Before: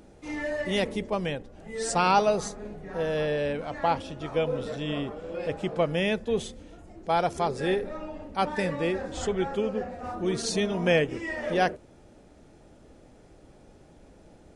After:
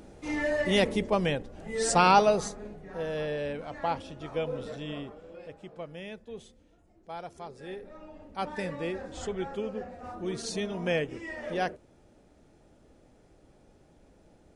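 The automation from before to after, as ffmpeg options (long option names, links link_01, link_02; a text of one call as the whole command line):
ffmpeg -i in.wav -af "volume=12dB,afade=type=out:start_time=1.98:duration=0.83:silence=0.421697,afade=type=out:start_time=4.71:duration=0.82:silence=0.298538,afade=type=in:start_time=7.66:duration=0.89:silence=0.334965" out.wav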